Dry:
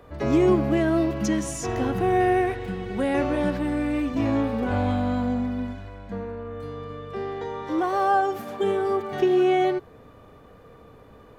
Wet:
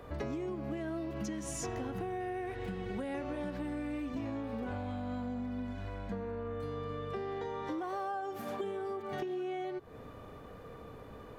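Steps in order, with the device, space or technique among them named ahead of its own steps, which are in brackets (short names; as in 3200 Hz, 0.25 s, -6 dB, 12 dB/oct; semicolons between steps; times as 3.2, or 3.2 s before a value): serial compression, leveller first (compressor 2:1, threshold -24 dBFS, peak gain reduction 5.5 dB; compressor 10:1, threshold -35 dBFS, peak gain reduction 15 dB)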